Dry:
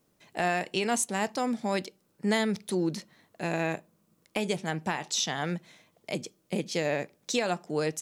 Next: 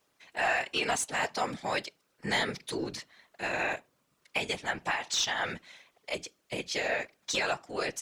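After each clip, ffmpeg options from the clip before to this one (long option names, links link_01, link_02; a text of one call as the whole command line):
ffmpeg -i in.wav -filter_complex "[0:a]tiltshelf=frequency=1200:gain=-7.5,asplit=2[link_01][link_02];[link_02]highpass=frequency=720:poles=1,volume=11dB,asoftclip=type=tanh:threshold=-8.5dB[link_03];[link_01][link_03]amix=inputs=2:normalize=0,lowpass=frequency=1500:poles=1,volume=-6dB,afftfilt=real='hypot(re,im)*cos(2*PI*random(0))':imag='hypot(re,im)*sin(2*PI*random(1))':win_size=512:overlap=0.75,volume=5dB" out.wav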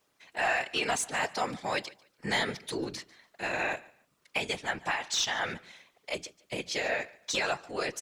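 ffmpeg -i in.wav -af "aecho=1:1:145|290:0.075|0.018" out.wav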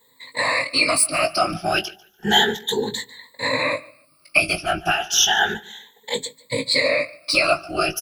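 ffmpeg -i in.wav -filter_complex "[0:a]afftfilt=real='re*pow(10,24/40*sin(2*PI*(1*log(max(b,1)*sr/1024/100)/log(2)-(0.32)*(pts-256)/sr)))':imag='im*pow(10,24/40*sin(2*PI*(1*log(max(b,1)*sr/1024/100)/log(2)-(0.32)*(pts-256)/sr)))':win_size=1024:overlap=0.75,aexciter=amount=1.9:drive=1:freq=3500,asplit=2[link_01][link_02];[link_02]adelay=19,volume=-7dB[link_03];[link_01][link_03]amix=inputs=2:normalize=0,volume=4.5dB" out.wav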